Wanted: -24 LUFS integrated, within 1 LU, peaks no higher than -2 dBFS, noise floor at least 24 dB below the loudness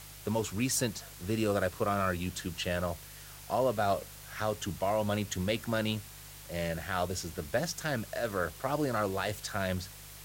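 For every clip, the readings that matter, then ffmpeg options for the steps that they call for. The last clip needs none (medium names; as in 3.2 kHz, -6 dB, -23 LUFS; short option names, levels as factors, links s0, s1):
hum 50 Hz; highest harmonic 150 Hz; hum level -53 dBFS; noise floor -49 dBFS; noise floor target -57 dBFS; loudness -33.0 LUFS; peak level -17.0 dBFS; loudness target -24.0 LUFS
-> -af "bandreject=f=50:t=h:w=4,bandreject=f=100:t=h:w=4,bandreject=f=150:t=h:w=4"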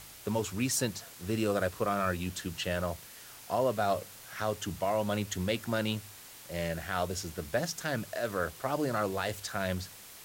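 hum not found; noise floor -50 dBFS; noise floor target -57 dBFS
-> -af "afftdn=nr=7:nf=-50"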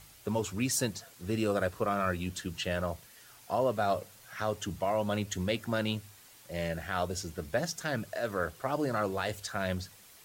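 noise floor -56 dBFS; noise floor target -57 dBFS
-> -af "afftdn=nr=6:nf=-56"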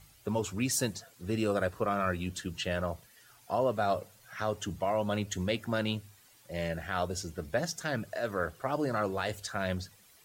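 noise floor -61 dBFS; loudness -33.0 LUFS; peak level -17.0 dBFS; loudness target -24.0 LUFS
-> -af "volume=2.82"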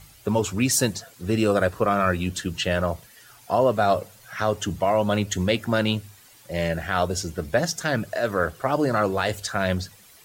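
loudness -24.0 LUFS; peak level -8.0 dBFS; noise floor -52 dBFS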